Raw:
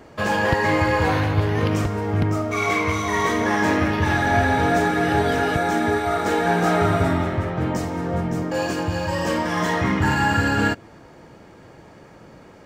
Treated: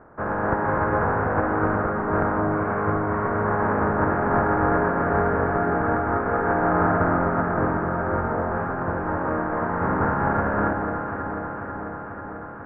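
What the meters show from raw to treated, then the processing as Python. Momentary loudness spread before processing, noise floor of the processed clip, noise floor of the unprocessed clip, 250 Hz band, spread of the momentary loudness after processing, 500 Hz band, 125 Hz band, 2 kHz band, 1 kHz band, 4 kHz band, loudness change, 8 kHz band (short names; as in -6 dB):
6 LU, -35 dBFS, -46 dBFS, -2.5 dB, 8 LU, -0.5 dB, -4.0 dB, -4.5 dB, 0.0 dB, under -30 dB, -2.5 dB, under -40 dB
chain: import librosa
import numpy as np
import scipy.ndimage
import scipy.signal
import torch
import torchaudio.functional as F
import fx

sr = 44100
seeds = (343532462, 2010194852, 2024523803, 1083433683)

y = fx.spec_flatten(x, sr, power=0.34)
y = scipy.signal.sosfilt(scipy.signal.ellip(4, 1.0, 60, 1500.0, 'lowpass', fs=sr, output='sos'), y)
y = fx.echo_alternate(y, sr, ms=246, hz=1100.0, feedback_pct=84, wet_db=-5)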